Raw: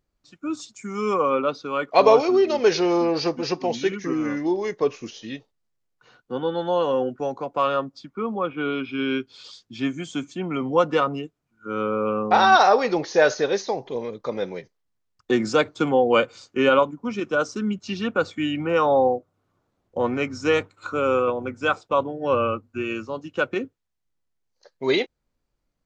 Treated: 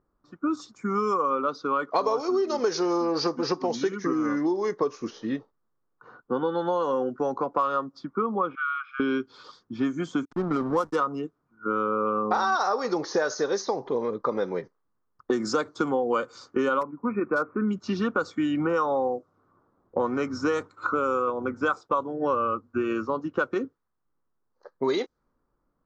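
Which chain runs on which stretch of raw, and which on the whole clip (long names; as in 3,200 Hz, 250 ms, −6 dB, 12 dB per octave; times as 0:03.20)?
0:08.55–0:09.00: linear-phase brick-wall high-pass 1,100 Hz + high-shelf EQ 2,500 Hz −10 dB + multiband upward and downward compressor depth 40%
0:10.25–0:10.96: high-shelf EQ 5,700 Hz +11.5 dB + slack as between gear wheels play −25.5 dBFS
0:16.81–0:17.68: linear-phase brick-wall low-pass 2,600 Hz + hard clipping −14.5 dBFS
whole clip: low-pass that shuts in the quiet parts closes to 1,400 Hz, open at −15.5 dBFS; drawn EQ curve 100 Hz 0 dB, 280 Hz +7 dB, 450 Hz +7 dB, 680 Hz +3 dB, 1,200 Hz +13 dB, 2,600 Hz −5 dB, 5,400 Hz +11 dB; downward compressor 6 to 1, threshold −23 dBFS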